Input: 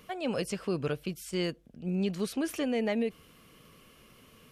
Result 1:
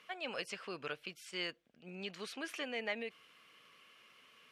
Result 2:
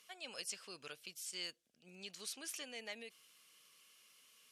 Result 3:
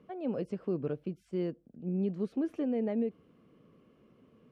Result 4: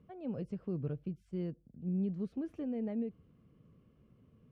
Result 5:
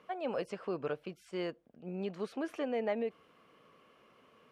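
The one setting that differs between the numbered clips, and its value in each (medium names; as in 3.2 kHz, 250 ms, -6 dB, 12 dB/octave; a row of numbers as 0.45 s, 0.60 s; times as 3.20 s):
band-pass filter, frequency: 2.2 kHz, 6.8 kHz, 280 Hz, 110 Hz, 810 Hz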